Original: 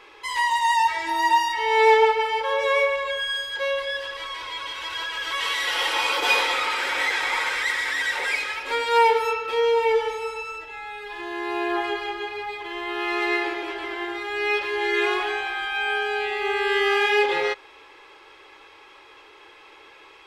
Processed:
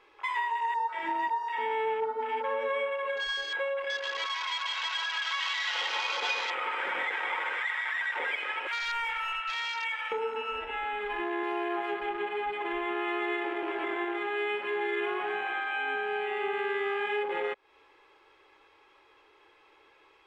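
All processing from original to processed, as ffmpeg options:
ffmpeg -i in.wav -filter_complex "[0:a]asettb=1/sr,asplit=3[link_01][link_02][link_03];[link_01]atrim=end=3.844[link_04];[link_02]atrim=start=3.84:end=6.55,asetpts=PTS-STARTPTS,afade=type=in:duration=0.004:curve=qsin,afade=type=out:start_time=2.706:duration=0.004:curve=qsin,lowpass=4800,aemphasis=mode=production:type=riaa[link_05];[link_03]atrim=start=6.546[link_06];[link_04][link_05]acrossfade=duration=0.004:curve1=hsin:curve2=qsin[link_07];[link_07][link_06]acrossfade=duration=0.004:curve1=qsin:curve2=hsin,asettb=1/sr,asplit=3[link_08][link_09][link_10];[link_08]atrim=end=8.674[link_11];[link_09]atrim=start=8.67:end=10.12,asetpts=PTS-STARTPTS,afade=type=in:duration=0.004:curve=qsin,afade=type=out:start_time=1.446:duration=0.004:curve=qsin,highpass=frequency=1400:width=0.5412,highpass=frequency=1400:width=1.3066,asoftclip=type=hard:threshold=-30dB[link_12];[link_10]atrim=start=10.116[link_13];[link_11][link_12]acrossfade=duration=0.004:curve1=hsin:curve2=qsin[link_14];[link_14][link_13]acrossfade=duration=0.004:curve1=qsin:curve2=hsin,asettb=1/sr,asplit=3[link_15][link_16][link_17];[link_15]atrim=end=11.434[link_18];[link_16]atrim=start=11.43:end=11.95,asetpts=PTS-STARTPTS,afade=type=in:duration=0.004:curve=qsin,afade=type=out:start_time=0.516:duration=0.004:curve=qsin,bass=frequency=250:gain=-7,treble=frequency=4000:gain=9,acrusher=bits=8:mix=0:aa=0.5[link_19];[link_17]atrim=start=11.946[link_20];[link_18][link_19]acrossfade=duration=0.004:curve1=hsin:curve2=qsin[link_21];[link_21][link_20]acrossfade=duration=0.004:curve1=qsin:curve2=hsin,highshelf=frequency=2600:gain=-6.5,acompressor=threshold=-35dB:ratio=6,afwtdn=0.00891,volume=6dB" out.wav

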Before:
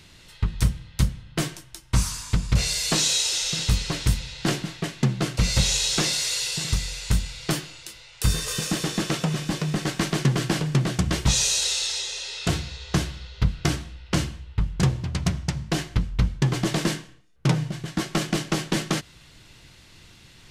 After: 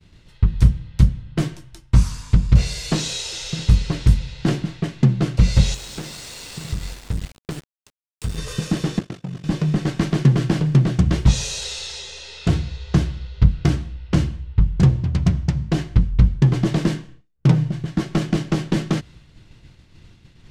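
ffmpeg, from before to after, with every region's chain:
ffmpeg -i in.wav -filter_complex "[0:a]asettb=1/sr,asplit=3[link_01][link_02][link_03];[link_01]atrim=end=5.744[link_04];[link_02]atrim=start=5.74:end=8.38,asetpts=PTS-STARTPTS,afade=type=in:duration=0.004:curve=qsin,afade=type=out:start_time=2.636:duration=0.004:curve=qsin,equalizer=frequency=8300:width=4.5:gain=7.5,acompressor=threshold=-25dB:ratio=12:attack=3.2:release=140:knee=1:detection=peak,aeval=exprs='val(0)*gte(abs(val(0)),0.0355)':channel_layout=same[link_05];[link_03]atrim=start=8.376[link_06];[link_04][link_05]acrossfade=duration=0.004:curve1=hsin:curve2=qsin[link_07];[link_07][link_06]acrossfade=duration=0.004:curve1=qsin:curve2=hsin,asettb=1/sr,asplit=3[link_08][link_09][link_10];[link_08]atrim=end=8.994[link_11];[link_09]atrim=start=8.99:end=9.44,asetpts=PTS-STARTPTS,afade=type=in:duration=0.004:curve=qsin,afade=type=out:start_time=0.446:duration=0.004:curve=qsin,agate=range=-33dB:threshold=-22dB:ratio=3:release=100:detection=peak,acompressor=threshold=-29dB:ratio=4:attack=3.2:release=140:knee=1:detection=peak,aeval=exprs='val(0)*sin(2*PI*24*n/s)':channel_layout=same[link_12];[link_10]atrim=start=9.436[link_13];[link_11][link_12]acrossfade=duration=0.004:curve1=hsin:curve2=qsin[link_14];[link_14][link_13]acrossfade=duration=0.004:curve1=qsin:curve2=hsin,lowshelf=frequency=400:gain=11,agate=range=-33dB:threshold=-38dB:ratio=3:detection=peak,highshelf=frequency=8000:gain=-11.5,volume=-2.5dB" out.wav

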